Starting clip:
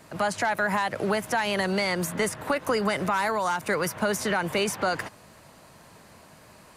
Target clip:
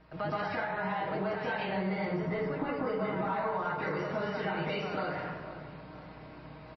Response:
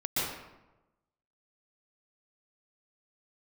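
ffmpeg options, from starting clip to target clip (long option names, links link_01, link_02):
-filter_complex "[0:a]asettb=1/sr,asplit=3[link_01][link_02][link_03];[link_01]atrim=end=1.524[link_04];[link_02]atrim=start=1.52:end=3.64,asetpts=PTS-STARTPTS,afade=type=in:duration=0.004:curve=qsin,afade=type=out:start_time=2.116:duration=0.004:curve=qsin,tiltshelf=frequency=1300:gain=4[link_05];[link_03]atrim=start=3.636[link_06];[link_04][link_05]acrossfade=duration=0.004:curve1=hsin:curve2=qsin[link_07];[link_07][link_06]acrossfade=duration=0.004:curve1=qsin:curve2=hsin,asplit=2[link_08][link_09];[link_09]adelay=481,lowpass=frequency=2000:poles=1,volume=-20.5dB,asplit=2[link_10][link_11];[link_11]adelay=481,lowpass=frequency=2000:poles=1,volume=0.44,asplit=2[link_12][link_13];[link_13]adelay=481,lowpass=frequency=2000:poles=1,volume=0.44[link_14];[link_08][link_10][link_12][link_14]amix=inputs=4:normalize=0,aeval=exprs='val(0)+0.00282*(sin(2*PI*60*n/s)+sin(2*PI*2*60*n/s)/2+sin(2*PI*3*60*n/s)/3+sin(2*PI*4*60*n/s)/4+sin(2*PI*5*60*n/s)/5)':channel_layout=same[link_15];[1:a]atrim=start_sample=2205[link_16];[link_15][link_16]afir=irnorm=-1:irlink=0,acompressor=threshold=-24dB:ratio=4,lowpass=3300,aecho=1:1:6.4:0.39,volume=-7.5dB" -ar 16000 -c:a libmp3lame -b:a 24k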